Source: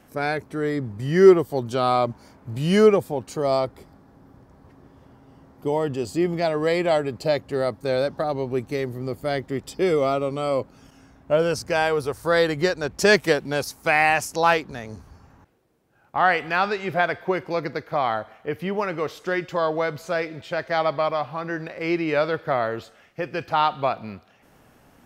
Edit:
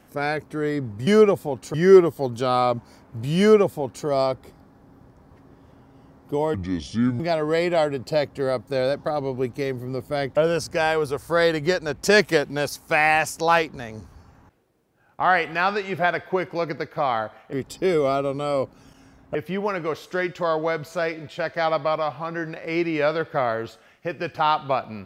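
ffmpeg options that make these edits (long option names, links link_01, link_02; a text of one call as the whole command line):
ffmpeg -i in.wav -filter_complex "[0:a]asplit=8[link_01][link_02][link_03][link_04][link_05][link_06][link_07][link_08];[link_01]atrim=end=1.072[link_09];[link_02]atrim=start=2.718:end=3.392[link_10];[link_03]atrim=start=1.068:end=5.874[link_11];[link_04]atrim=start=5.87:end=6.33,asetpts=PTS-STARTPTS,asetrate=30870,aresample=44100,atrim=end_sample=28980,asetpts=PTS-STARTPTS[link_12];[link_05]atrim=start=6.326:end=9.502[link_13];[link_06]atrim=start=11.318:end=18.482[link_14];[link_07]atrim=start=9.498:end=11.322[link_15];[link_08]atrim=start=18.478[link_16];[link_09][link_10]acrossfade=duration=0.004:curve1=hsin:curve2=hsin[link_17];[link_17][link_11]acrossfade=duration=0.004:curve1=hsin:curve2=hsin[link_18];[link_18][link_12]acrossfade=duration=0.004:curve1=hsin:curve2=hsin[link_19];[link_19][link_13]acrossfade=duration=0.004:curve1=hsin:curve2=hsin[link_20];[link_20][link_14]acrossfade=duration=0.004:curve1=hsin:curve2=hsin[link_21];[link_21][link_15]acrossfade=duration=0.004:curve1=hsin:curve2=hsin[link_22];[link_22][link_16]acrossfade=duration=0.004:curve1=hsin:curve2=hsin" out.wav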